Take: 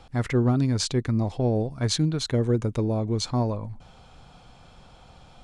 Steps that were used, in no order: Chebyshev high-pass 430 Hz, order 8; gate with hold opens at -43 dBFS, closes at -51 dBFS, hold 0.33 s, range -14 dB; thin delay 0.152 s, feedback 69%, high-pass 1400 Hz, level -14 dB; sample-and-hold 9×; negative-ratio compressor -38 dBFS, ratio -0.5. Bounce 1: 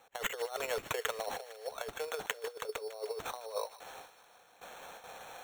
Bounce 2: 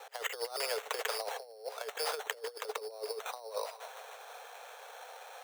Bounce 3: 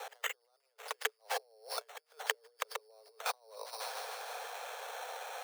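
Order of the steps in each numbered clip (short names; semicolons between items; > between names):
Chebyshev high-pass > gate with hold > negative-ratio compressor > sample-and-hold > thin delay; thin delay > sample-and-hold > Chebyshev high-pass > negative-ratio compressor > gate with hold; sample-and-hold > thin delay > negative-ratio compressor > gate with hold > Chebyshev high-pass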